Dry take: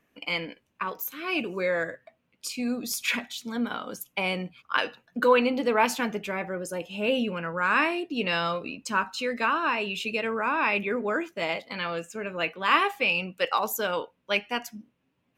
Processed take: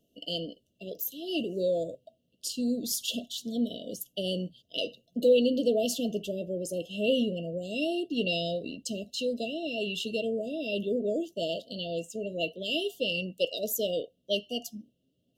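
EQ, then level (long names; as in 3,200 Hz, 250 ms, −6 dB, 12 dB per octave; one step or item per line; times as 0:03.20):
linear-phase brick-wall band-stop 710–2,700 Hz
0.0 dB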